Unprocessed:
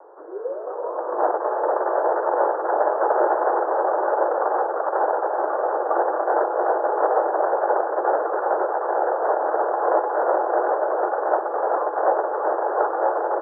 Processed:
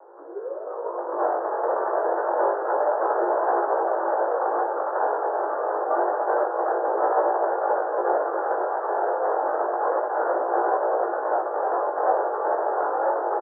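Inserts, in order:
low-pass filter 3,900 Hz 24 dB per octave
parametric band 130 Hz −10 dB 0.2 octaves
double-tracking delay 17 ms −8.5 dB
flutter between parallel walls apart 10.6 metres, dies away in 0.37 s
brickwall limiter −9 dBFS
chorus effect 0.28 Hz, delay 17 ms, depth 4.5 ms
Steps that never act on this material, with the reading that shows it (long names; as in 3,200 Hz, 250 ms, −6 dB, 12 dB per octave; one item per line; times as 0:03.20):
low-pass filter 3,900 Hz: nothing at its input above 1,800 Hz
parametric band 130 Hz: nothing at its input below 290 Hz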